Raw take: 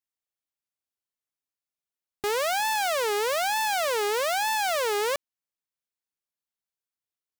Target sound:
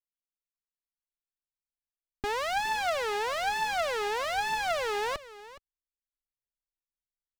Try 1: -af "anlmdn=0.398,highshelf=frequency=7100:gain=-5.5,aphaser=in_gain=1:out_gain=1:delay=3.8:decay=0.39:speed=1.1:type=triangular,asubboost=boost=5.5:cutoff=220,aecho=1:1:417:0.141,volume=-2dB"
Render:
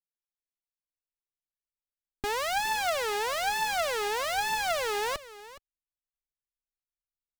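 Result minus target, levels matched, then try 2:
8,000 Hz band +5.0 dB
-af "anlmdn=0.398,highshelf=frequency=7100:gain=-17,aphaser=in_gain=1:out_gain=1:delay=3.8:decay=0.39:speed=1.1:type=triangular,asubboost=boost=5.5:cutoff=220,aecho=1:1:417:0.141,volume=-2dB"

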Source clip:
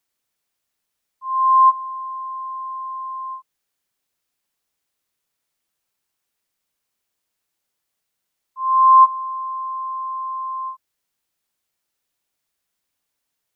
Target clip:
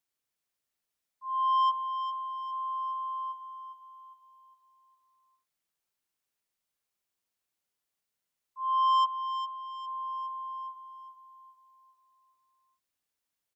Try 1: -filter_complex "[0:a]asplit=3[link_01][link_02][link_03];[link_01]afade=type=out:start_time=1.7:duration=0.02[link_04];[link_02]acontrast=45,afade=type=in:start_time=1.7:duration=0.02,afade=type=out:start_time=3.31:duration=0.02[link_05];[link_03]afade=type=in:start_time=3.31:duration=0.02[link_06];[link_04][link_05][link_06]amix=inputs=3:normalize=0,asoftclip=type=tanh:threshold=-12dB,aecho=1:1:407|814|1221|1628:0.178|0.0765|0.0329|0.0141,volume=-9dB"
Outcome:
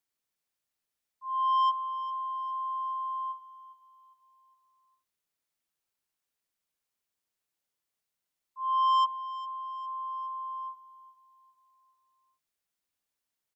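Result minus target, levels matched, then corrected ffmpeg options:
echo-to-direct −7 dB
-filter_complex "[0:a]asplit=3[link_01][link_02][link_03];[link_01]afade=type=out:start_time=1.7:duration=0.02[link_04];[link_02]acontrast=45,afade=type=in:start_time=1.7:duration=0.02,afade=type=out:start_time=3.31:duration=0.02[link_05];[link_03]afade=type=in:start_time=3.31:duration=0.02[link_06];[link_04][link_05][link_06]amix=inputs=3:normalize=0,asoftclip=type=tanh:threshold=-12dB,aecho=1:1:407|814|1221|1628|2035:0.398|0.171|0.0736|0.0317|0.0136,volume=-9dB"

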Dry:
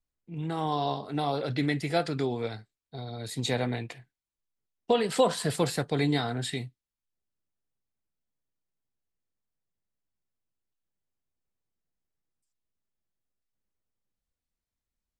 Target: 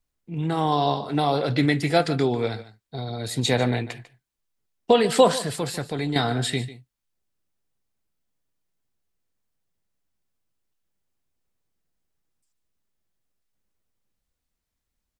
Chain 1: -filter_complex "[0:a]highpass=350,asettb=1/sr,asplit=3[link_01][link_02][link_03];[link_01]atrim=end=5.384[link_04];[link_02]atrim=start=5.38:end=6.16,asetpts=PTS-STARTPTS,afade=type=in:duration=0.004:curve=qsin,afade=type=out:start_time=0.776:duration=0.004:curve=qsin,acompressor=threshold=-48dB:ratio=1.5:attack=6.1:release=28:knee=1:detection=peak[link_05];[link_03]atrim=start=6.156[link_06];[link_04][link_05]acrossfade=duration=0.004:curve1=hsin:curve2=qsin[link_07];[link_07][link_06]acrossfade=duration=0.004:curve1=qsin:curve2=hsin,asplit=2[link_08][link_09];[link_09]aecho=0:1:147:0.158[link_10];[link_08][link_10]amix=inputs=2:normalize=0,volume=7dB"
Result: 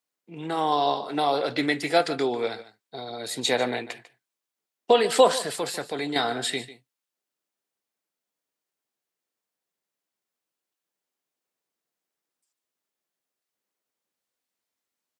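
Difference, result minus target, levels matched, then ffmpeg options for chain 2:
250 Hz band −4.0 dB
-filter_complex "[0:a]asettb=1/sr,asplit=3[link_01][link_02][link_03];[link_01]atrim=end=5.384[link_04];[link_02]atrim=start=5.38:end=6.16,asetpts=PTS-STARTPTS,afade=type=in:duration=0.004:curve=qsin,afade=type=out:start_time=0.776:duration=0.004:curve=qsin,acompressor=threshold=-48dB:ratio=1.5:attack=6.1:release=28:knee=1:detection=peak[link_05];[link_03]atrim=start=6.156[link_06];[link_04][link_05]acrossfade=duration=0.004:curve1=hsin:curve2=qsin[link_07];[link_07][link_06]acrossfade=duration=0.004:curve1=qsin:curve2=hsin,asplit=2[link_08][link_09];[link_09]aecho=0:1:147:0.158[link_10];[link_08][link_10]amix=inputs=2:normalize=0,volume=7dB"

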